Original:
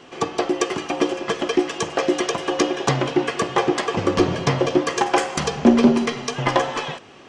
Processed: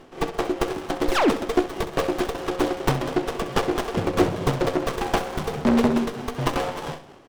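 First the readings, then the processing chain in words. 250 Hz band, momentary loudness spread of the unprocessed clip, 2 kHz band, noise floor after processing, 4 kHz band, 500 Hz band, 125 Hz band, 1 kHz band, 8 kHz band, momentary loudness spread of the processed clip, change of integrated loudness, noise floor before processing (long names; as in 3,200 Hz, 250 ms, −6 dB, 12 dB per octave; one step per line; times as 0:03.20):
−3.5 dB, 7 LU, −4.5 dB, −46 dBFS, −5.5 dB, −3.0 dB, −2.0 dB, −3.5 dB, −7.5 dB, 7 LU, −3.5 dB, −45 dBFS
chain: phase distortion by the signal itself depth 0.64 ms
sound drawn into the spectrogram fall, 0:01.08–0:01.30, 220–5,000 Hz −13 dBFS
amplitude tremolo 4.5 Hz, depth 47%
repeating echo 65 ms, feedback 45%, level −12 dB
windowed peak hold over 17 samples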